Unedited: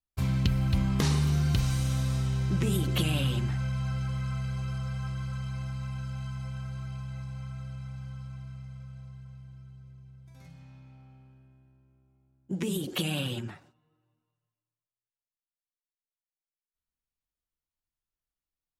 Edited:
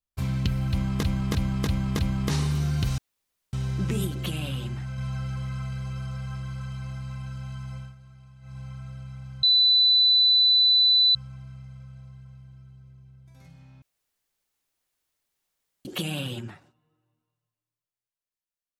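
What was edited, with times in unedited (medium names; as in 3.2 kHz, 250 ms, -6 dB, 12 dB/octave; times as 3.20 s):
0.71–1.03 s: loop, 5 plays
1.70–2.25 s: room tone
2.79–3.70 s: gain -3.5 dB
6.50–7.30 s: dip -12.5 dB, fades 0.17 s
8.15 s: add tone 3.99 kHz -15.5 dBFS 1.72 s
10.82–12.85 s: room tone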